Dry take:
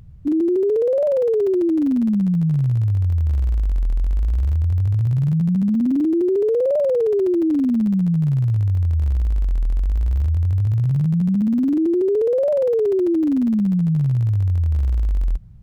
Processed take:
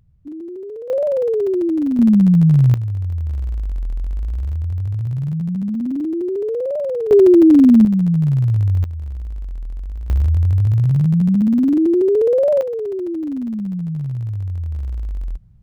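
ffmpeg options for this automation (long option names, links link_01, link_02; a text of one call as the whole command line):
ffmpeg -i in.wav -af "asetnsamples=nb_out_samples=441:pad=0,asendcmd='0.9 volume volume 0dB;1.99 volume volume 7dB;2.74 volume volume -3.5dB;7.11 volume volume 9.5dB;7.85 volume volume 2.5dB;8.84 volume volume -8.5dB;10.1 volume volume 3.5dB;12.61 volume volume -5.5dB',volume=-13dB" out.wav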